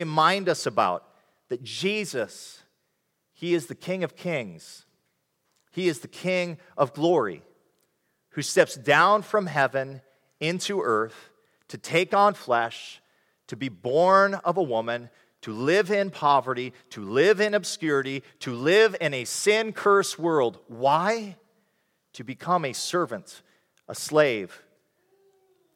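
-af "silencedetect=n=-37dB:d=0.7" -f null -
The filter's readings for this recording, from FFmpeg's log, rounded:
silence_start: 2.51
silence_end: 3.42 | silence_duration: 0.91
silence_start: 4.75
silence_end: 5.77 | silence_duration: 1.02
silence_start: 7.37
silence_end: 8.37 | silence_duration: 1.00
silence_start: 21.33
silence_end: 22.15 | silence_duration: 0.83
silence_start: 24.55
silence_end: 25.76 | silence_duration: 1.21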